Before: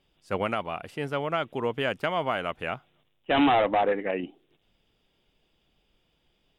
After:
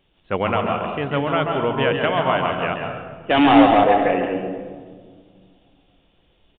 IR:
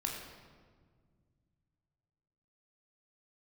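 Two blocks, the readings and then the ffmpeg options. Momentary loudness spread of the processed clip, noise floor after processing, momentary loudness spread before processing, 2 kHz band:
16 LU, -62 dBFS, 13 LU, +7.5 dB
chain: -filter_complex "[0:a]asplit=2[a][b];[b]equalizer=f=2.2k:t=o:w=0.5:g=-6[c];[1:a]atrim=start_sample=2205,adelay=136[d];[c][d]afir=irnorm=-1:irlink=0,volume=-3dB[e];[a][e]amix=inputs=2:normalize=0,aresample=8000,aresample=44100,volume=6dB"

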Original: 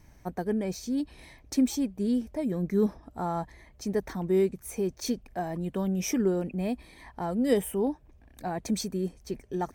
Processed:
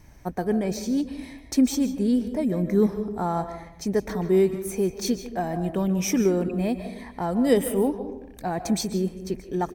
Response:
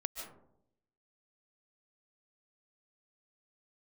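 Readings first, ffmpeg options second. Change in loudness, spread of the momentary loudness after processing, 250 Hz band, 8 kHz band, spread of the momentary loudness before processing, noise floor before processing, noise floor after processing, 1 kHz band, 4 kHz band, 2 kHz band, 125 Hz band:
+5.0 dB, 11 LU, +5.0 dB, +5.0 dB, 10 LU, -57 dBFS, -46 dBFS, +5.0 dB, +5.0 dB, +5.0 dB, +5.0 dB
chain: -filter_complex "[0:a]asplit=2[a][b];[b]adelay=150,highpass=300,lowpass=3.4k,asoftclip=type=hard:threshold=-21.5dB,volume=-15dB[c];[a][c]amix=inputs=2:normalize=0,asplit=2[d][e];[1:a]atrim=start_sample=2205[f];[e][f]afir=irnorm=-1:irlink=0,volume=-1.5dB[g];[d][g]amix=inputs=2:normalize=0"

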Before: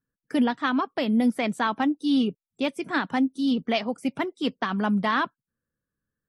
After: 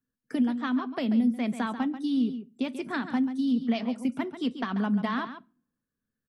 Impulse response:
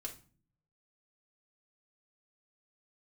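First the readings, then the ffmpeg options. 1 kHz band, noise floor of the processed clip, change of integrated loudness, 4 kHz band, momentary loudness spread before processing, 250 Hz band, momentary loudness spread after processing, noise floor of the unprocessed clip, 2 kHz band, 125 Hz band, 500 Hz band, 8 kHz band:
-7.5 dB, under -85 dBFS, -3.0 dB, -8.0 dB, 7 LU, -1.5 dB, 7 LU, under -85 dBFS, -7.5 dB, -2.0 dB, -7.0 dB, n/a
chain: -filter_complex "[0:a]equalizer=f=240:t=o:w=0.36:g=9,acrossover=split=160[a][b];[b]acompressor=threshold=-24dB:ratio=6[c];[a][c]amix=inputs=2:normalize=0,aecho=1:1:138:0.282,asplit=2[d][e];[1:a]atrim=start_sample=2205[f];[e][f]afir=irnorm=-1:irlink=0,volume=-10dB[g];[d][g]amix=inputs=2:normalize=0,volume=-4.5dB"

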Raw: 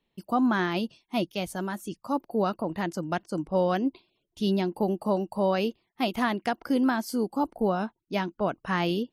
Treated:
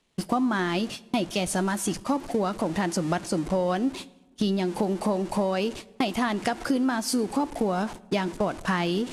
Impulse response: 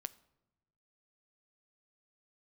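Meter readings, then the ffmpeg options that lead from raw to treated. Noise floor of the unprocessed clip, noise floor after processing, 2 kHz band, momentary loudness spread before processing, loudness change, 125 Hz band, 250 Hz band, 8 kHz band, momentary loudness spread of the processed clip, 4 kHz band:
-80 dBFS, -55 dBFS, +1.5 dB, 7 LU, +1.5 dB, +2.5 dB, +1.5 dB, +12.5 dB, 4 LU, +3.5 dB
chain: -filter_complex "[0:a]aeval=exprs='val(0)+0.5*0.0126*sgn(val(0))':c=same,lowpass=f=10k:w=0.5412,lowpass=f=10k:w=1.3066,highshelf=f=7.2k:g=6.5,agate=range=-37dB:threshold=-37dB:ratio=16:detection=peak,acompressor=threshold=-33dB:ratio=6,asplit=2[a][b];[1:a]atrim=start_sample=2205,asetrate=29547,aresample=44100[c];[b][c]afir=irnorm=-1:irlink=0,volume=8dB[d];[a][d]amix=inputs=2:normalize=0"

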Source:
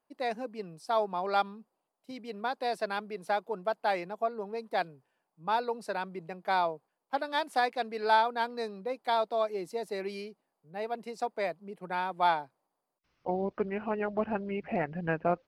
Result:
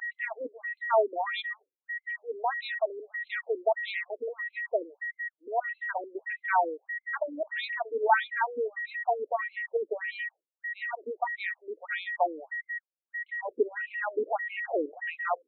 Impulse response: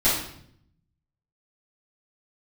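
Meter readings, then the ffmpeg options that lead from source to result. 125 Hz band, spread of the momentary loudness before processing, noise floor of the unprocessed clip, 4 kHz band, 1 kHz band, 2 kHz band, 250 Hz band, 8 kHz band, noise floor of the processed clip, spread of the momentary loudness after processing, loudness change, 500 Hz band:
under -30 dB, 12 LU, -84 dBFS, -2.5 dB, -1.0 dB, +6.5 dB, -7.0 dB, n/a, under -85 dBFS, 10 LU, +0.5 dB, +1.0 dB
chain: -filter_complex "[0:a]agate=range=-33dB:threshold=-46dB:ratio=3:detection=peak,acrossover=split=130|1300|1500[a][b][c][d];[c]asoftclip=type=tanh:threshold=-40dB[e];[a][b][e][d]amix=inputs=4:normalize=0,aeval=exprs='val(0)+0.0141*sin(2*PI*1900*n/s)':c=same,afftfilt=real='re*between(b*sr/1024,360*pow(3000/360,0.5+0.5*sin(2*PI*1.6*pts/sr))/1.41,360*pow(3000/360,0.5+0.5*sin(2*PI*1.6*pts/sr))*1.41)':imag='im*between(b*sr/1024,360*pow(3000/360,0.5+0.5*sin(2*PI*1.6*pts/sr))/1.41,360*pow(3000/360,0.5+0.5*sin(2*PI*1.6*pts/sr))*1.41)':win_size=1024:overlap=0.75,volume=6.5dB"

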